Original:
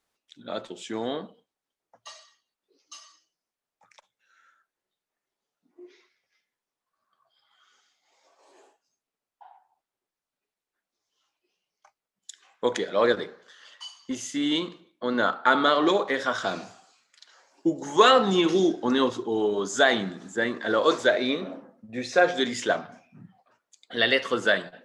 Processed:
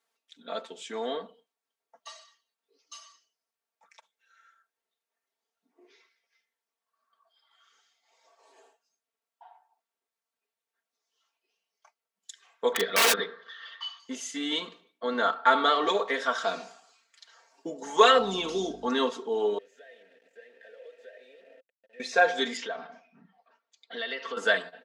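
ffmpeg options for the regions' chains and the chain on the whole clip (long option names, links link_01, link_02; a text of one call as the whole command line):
ffmpeg -i in.wav -filter_complex "[0:a]asettb=1/sr,asplit=3[link_01][link_02][link_03];[link_01]atrim=end=12.734[link_04];[link_02]atrim=start=12.73:end=14,asetpts=PTS-STARTPTS,afade=type=in:duration=0.004:curve=qsin,afade=type=out:start_time=1.266:duration=0.004:curve=qsin,highpass=100,equalizer=frequency=130:width_type=q:width=4:gain=9,equalizer=frequency=190:width_type=q:width=4:gain=8,equalizer=frequency=380:width_type=q:width=4:gain=4,equalizer=frequency=1200:width_type=q:width=4:gain=10,equalizer=frequency=1800:width_type=q:width=4:gain=9,equalizer=frequency=3500:width_type=q:width=4:gain=9,lowpass=frequency=4800:width=0.5412,lowpass=frequency=4800:width=1.3066,aeval=exprs='(mod(4.73*val(0)+1,2)-1)/4.73':channel_layout=same[link_05];[link_03]atrim=start=13.996[link_06];[link_04][link_05]acrossfade=duration=0.004:curve1=hsin:curve2=qsin[link_07];[link_07][link_06]acrossfade=duration=0.004:curve1=qsin:curve2=hsin,asettb=1/sr,asplit=3[link_08][link_09][link_10];[link_08]atrim=end=18.184[link_11];[link_09]atrim=start=18.18:end=18.87,asetpts=PTS-STARTPTS,afade=type=in:duration=0.004:curve=qsin,afade=type=out:start_time=0.686:duration=0.004:curve=qsin,equalizer=frequency=1800:width=2:gain=-12,aeval=exprs='val(0)+0.0224*(sin(2*PI*50*n/s)+sin(2*PI*2*50*n/s)/2+sin(2*PI*3*50*n/s)/3+sin(2*PI*4*50*n/s)/4+sin(2*PI*5*50*n/s)/5)':channel_layout=same[link_12];[link_10]atrim=start=18.866[link_13];[link_11][link_12]acrossfade=duration=0.004:curve1=hsin:curve2=qsin[link_14];[link_14][link_13]acrossfade=duration=0.004:curve1=qsin:curve2=hsin,asettb=1/sr,asplit=3[link_15][link_16][link_17];[link_15]atrim=end=19.584[link_18];[link_16]atrim=start=19.58:end=22,asetpts=PTS-STARTPTS,afade=type=in:duration=0.004:curve=qsin,afade=type=out:start_time=2.416:duration=0.004:curve=qsin,acompressor=threshold=-35dB:ratio=8:attack=3.2:release=140:knee=1:detection=peak,aeval=exprs='val(0)*gte(abs(val(0)),0.00944)':channel_layout=same,asplit=3[link_19][link_20][link_21];[link_19]bandpass=frequency=530:width_type=q:width=8,volume=0dB[link_22];[link_20]bandpass=frequency=1840:width_type=q:width=8,volume=-6dB[link_23];[link_21]bandpass=frequency=2480:width_type=q:width=8,volume=-9dB[link_24];[link_22][link_23][link_24]amix=inputs=3:normalize=0[link_25];[link_17]atrim=start=21.996[link_26];[link_18][link_25]acrossfade=duration=0.004:curve1=hsin:curve2=qsin[link_27];[link_27][link_26]acrossfade=duration=0.004:curve1=qsin:curve2=hsin,asettb=1/sr,asplit=3[link_28][link_29][link_30];[link_28]atrim=end=22.574[link_31];[link_29]atrim=start=22.57:end=24.37,asetpts=PTS-STARTPTS,afade=type=in:duration=0.004:curve=qsin,afade=type=out:start_time=1.796:duration=0.004:curve=qsin,lowpass=frequency=5400:width=0.5412,lowpass=frequency=5400:width=1.3066,acompressor=threshold=-32dB:ratio=3:attack=3.2:release=140:knee=1:detection=peak[link_32];[link_30]atrim=start=24.366[link_33];[link_31][link_32]acrossfade=duration=0.004:curve1=hsin:curve2=qsin[link_34];[link_34][link_33]acrossfade=duration=0.004:curve1=qsin:curve2=hsin,highpass=87,bass=frequency=250:gain=-15,treble=frequency=4000:gain=-1,aecho=1:1:4.4:0.78,volume=-3dB" out.wav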